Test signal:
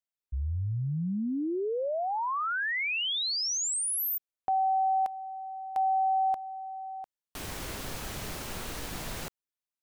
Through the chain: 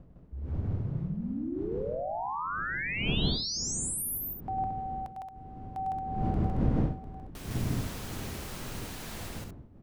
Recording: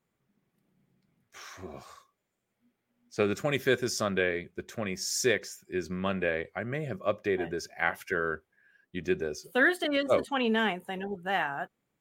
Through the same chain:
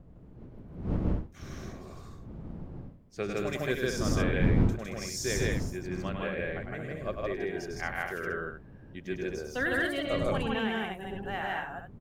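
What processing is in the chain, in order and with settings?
wind noise 190 Hz -32 dBFS; loudspeakers at several distances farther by 35 m -5 dB, 54 m 0 dB, 77 m -6 dB; gain -7.5 dB

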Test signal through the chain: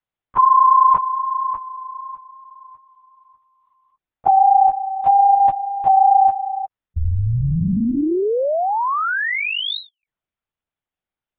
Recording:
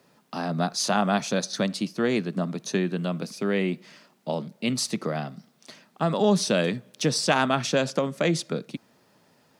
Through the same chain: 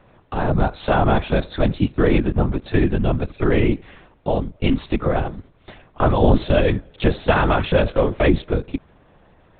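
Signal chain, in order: high shelf 2900 Hz -10.5 dB; in parallel at +2 dB: limiter -19 dBFS; on the sum: LPC vocoder at 8 kHz whisper; gain +3 dB

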